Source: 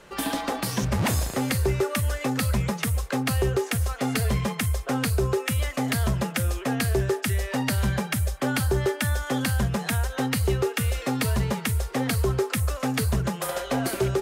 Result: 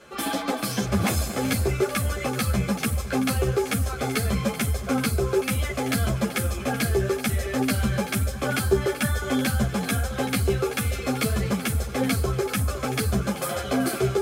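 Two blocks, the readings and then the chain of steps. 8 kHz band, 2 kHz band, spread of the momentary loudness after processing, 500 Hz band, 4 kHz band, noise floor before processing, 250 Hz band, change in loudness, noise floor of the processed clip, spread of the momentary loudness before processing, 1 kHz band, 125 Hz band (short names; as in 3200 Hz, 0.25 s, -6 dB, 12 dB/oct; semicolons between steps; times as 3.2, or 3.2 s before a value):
+1.0 dB, +1.0 dB, 3 LU, +1.5 dB, +0.5 dB, -38 dBFS, +2.0 dB, +0.5 dB, -33 dBFS, 3 LU, +0.5 dB, -1.0 dB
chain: notch comb 940 Hz; split-band echo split 1200 Hz, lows 0.508 s, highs 0.383 s, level -13 dB; ensemble effect; gain +5 dB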